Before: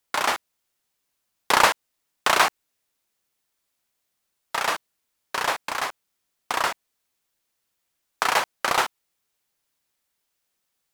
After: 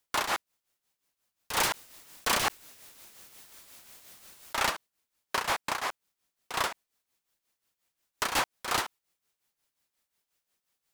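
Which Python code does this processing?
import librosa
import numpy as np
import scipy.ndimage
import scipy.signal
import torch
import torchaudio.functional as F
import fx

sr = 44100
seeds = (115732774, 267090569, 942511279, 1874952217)

y = 10.0 ** (-19.0 / 20.0) * (np.abs((x / 10.0 ** (-19.0 / 20.0) + 3.0) % 4.0 - 2.0) - 1.0)
y = y * (1.0 - 0.71 / 2.0 + 0.71 / 2.0 * np.cos(2.0 * np.pi * 5.6 * (np.arange(len(y)) / sr)))
y = fx.env_flatten(y, sr, amount_pct=50, at=(1.58, 4.7))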